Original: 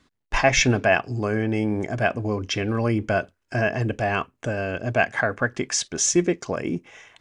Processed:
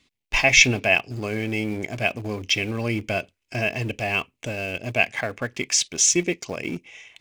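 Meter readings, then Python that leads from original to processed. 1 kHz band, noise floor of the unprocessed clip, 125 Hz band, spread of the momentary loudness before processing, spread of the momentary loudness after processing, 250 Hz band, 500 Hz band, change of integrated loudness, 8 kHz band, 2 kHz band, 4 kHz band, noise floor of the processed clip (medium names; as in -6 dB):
-5.0 dB, -75 dBFS, -3.5 dB, 9 LU, 14 LU, -3.5 dB, -4.0 dB, +1.0 dB, +4.0 dB, +2.5 dB, +5.5 dB, -79 dBFS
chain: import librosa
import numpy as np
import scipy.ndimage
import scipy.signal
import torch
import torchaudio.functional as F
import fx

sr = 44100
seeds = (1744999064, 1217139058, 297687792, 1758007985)

p1 = fx.high_shelf_res(x, sr, hz=1900.0, db=6.5, q=3.0)
p2 = np.where(np.abs(p1) >= 10.0 ** (-24.0 / 20.0), p1, 0.0)
p3 = p1 + (p2 * 10.0 ** (-10.5 / 20.0))
y = p3 * 10.0 ** (-5.5 / 20.0)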